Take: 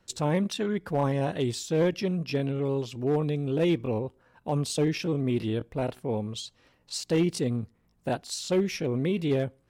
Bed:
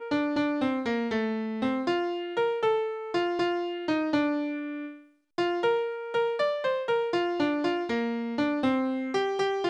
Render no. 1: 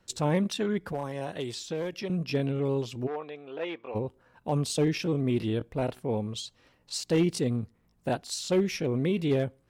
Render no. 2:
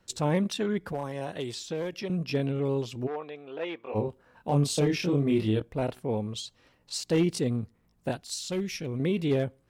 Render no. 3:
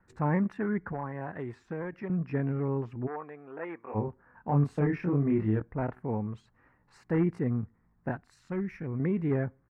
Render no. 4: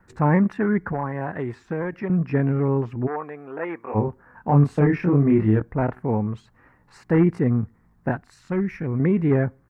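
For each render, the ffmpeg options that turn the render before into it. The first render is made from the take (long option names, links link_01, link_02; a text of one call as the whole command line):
ffmpeg -i in.wav -filter_complex "[0:a]asettb=1/sr,asplit=3[link_01][link_02][link_03];[link_01]atrim=end=0.924[link_04];[link_02]atrim=start=0.92:end=2.1,asetpts=PTS-STARTPTS,afade=type=in:duration=0.004:curve=qsin,afade=type=out:start_time=1.176:duration=0.004:curve=qsin,acrossover=split=410|6200[link_05][link_06][link_07];[link_05]acompressor=threshold=-39dB:ratio=4[link_08];[link_06]acompressor=threshold=-33dB:ratio=4[link_09];[link_07]acompressor=threshold=-53dB:ratio=4[link_10];[link_08][link_09][link_10]amix=inputs=3:normalize=0[link_11];[link_03]atrim=start=2.096[link_12];[link_04][link_11]acrossfade=duration=0.004:curve1=hsin:curve2=qsin[link_13];[link_13][link_12]acrossfade=duration=0.004:curve1=qsin:curve2=hsin,asplit=3[link_14][link_15][link_16];[link_14]afade=type=out:start_time=3.06:duration=0.02[link_17];[link_15]highpass=710,lowpass=2500,afade=type=in:start_time=3.06:duration=0.02,afade=type=out:start_time=3.94:duration=0.02[link_18];[link_16]afade=type=in:start_time=3.94:duration=0.02[link_19];[link_17][link_18][link_19]amix=inputs=3:normalize=0" out.wav
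ffmpeg -i in.wav -filter_complex "[0:a]asettb=1/sr,asplit=3[link_01][link_02][link_03];[link_01]atrim=end=3.834[link_04];[link_02]atrim=start=3.83:end=5.6,asetpts=PTS-STARTPTS,afade=type=in:duration=0.004:curve=qsin,afade=type=out:start_time=1.766:duration=0.004:curve=qsin,asplit=2[link_05][link_06];[link_06]adelay=28,volume=-3dB[link_07];[link_05][link_07]amix=inputs=2:normalize=0,atrim=end_sample=78057[link_08];[link_03]atrim=start=5.596[link_09];[link_04][link_08]acrossfade=duration=0.004:curve1=hsin:curve2=qsin[link_10];[link_10][link_09]acrossfade=duration=0.004:curve1=qsin:curve2=hsin,asettb=1/sr,asplit=3[link_11][link_12][link_13];[link_11]atrim=end=8.114[link_14];[link_12]atrim=start=8.11:end=9,asetpts=PTS-STARTPTS,afade=type=in:duration=0.004:curve=qsin,afade=type=out:start_time=0.886:duration=0.004:curve=qsin,equalizer=frequency=590:width=0.36:gain=-8[link_15];[link_13]atrim=start=8.996[link_16];[link_14][link_15]acrossfade=duration=0.004:curve1=hsin:curve2=qsin[link_17];[link_17][link_16]acrossfade=duration=0.004:curve1=qsin:curve2=hsin" out.wav
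ffmpeg -i in.wav -af "firequalizer=gain_entry='entry(200,0);entry(550,-7);entry(860,1);entry(1800,2);entry(3300,-30)':delay=0.05:min_phase=1" out.wav
ffmpeg -i in.wav -af "volume=9dB" out.wav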